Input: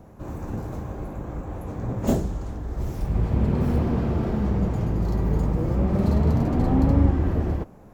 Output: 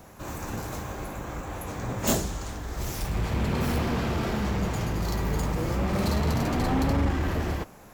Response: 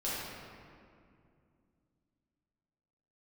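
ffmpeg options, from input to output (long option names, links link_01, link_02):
-af "asoftclip=type=tanh:threshold=-13.5dB,tiltshelf=frequency=1100:gain=-9.5,volume=5dB"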